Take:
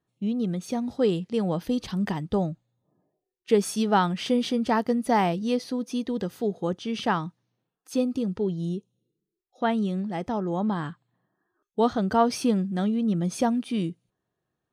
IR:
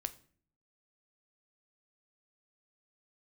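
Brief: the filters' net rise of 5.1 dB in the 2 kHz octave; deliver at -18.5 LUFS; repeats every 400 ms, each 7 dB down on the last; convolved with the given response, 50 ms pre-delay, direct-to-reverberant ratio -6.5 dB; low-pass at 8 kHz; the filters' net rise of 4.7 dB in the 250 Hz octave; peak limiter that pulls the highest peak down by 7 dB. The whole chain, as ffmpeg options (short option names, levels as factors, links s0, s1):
-filter_complex "[0:a]lowpass=8000,equalizer=f=250:t=o:g=5.5,equalizer=f=2000:t=o:g=6.5,alimiter=limit=0.237:level=0:latency=1,aecho=1:1:400|800|1200|1600|2000:0.447|0.201|0.0905|0.0407|0.0183,asplit=2[s0][s1];[1:a]atrim=start_sample=2205,adelay=50[s2];[s1][s2]afir=irnorm=-1:irlink=0,volume=2.37[s3];[s0][s3]amix=inputs=2:normalize=0,volume=0.841"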